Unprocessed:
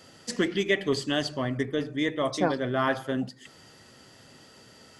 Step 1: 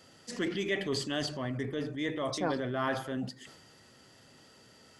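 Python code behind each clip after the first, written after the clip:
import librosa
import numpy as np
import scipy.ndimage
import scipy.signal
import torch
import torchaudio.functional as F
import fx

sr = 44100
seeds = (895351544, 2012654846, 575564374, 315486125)

y = fx.transient(x, sr, attack_db=-4, sustain_db=6)
y = F.gain(torch.from_numpy(y), -5.5).numpy()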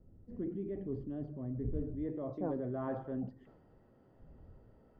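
y = fx.dmg_wind(x, sr, seeds[0], corner_hz=83.0, level_db=-47.0)
y = fx.filter_sweep_lowpass(y, sr, from_hz=330.0, to_hz=730.0, start_s=1.29, end_s=3.16, q=0.78)
y = F.gain(torch.from_numpy(y), -3.0).numpy()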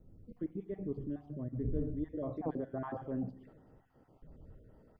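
y = fx.spec_dropout(x, sr, seeds[1], share_pct=29)
y = fx.room_shoebox(y, sr, seeds[2], volume_m3=2200.0, walls='furnished', distance_m=0.46)
y = F.gain(torch.from_numpy(y), 1.5).numpy()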